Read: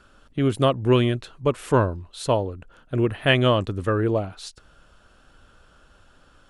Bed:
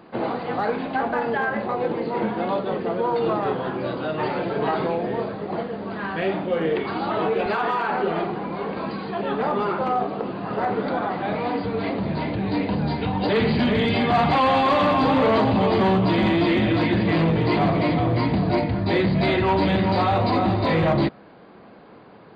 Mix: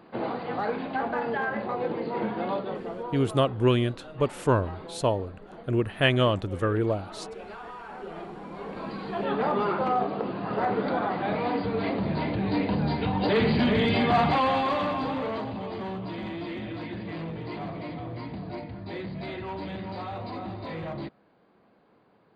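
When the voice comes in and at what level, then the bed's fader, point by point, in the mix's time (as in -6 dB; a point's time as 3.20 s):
2.75 s, -3.5 dB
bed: 2.53 s -5 dB
3.46 s -18 dB
7.85 s -18 dB
9.27 s -2.5 dB
14.15 s -2.5 dB
15.61 s -15.5 dB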